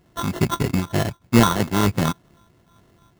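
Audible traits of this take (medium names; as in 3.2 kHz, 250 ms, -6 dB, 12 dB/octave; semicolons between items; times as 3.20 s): a buzz of ramps at a fixed pitch in blocks of 32 samples; phasing stages 8, 3.2 Hz, lowest notch 670–1800 Hz; aliases and images of a low sample rate 2.4 kHz, jitter 0%; random flutter of the level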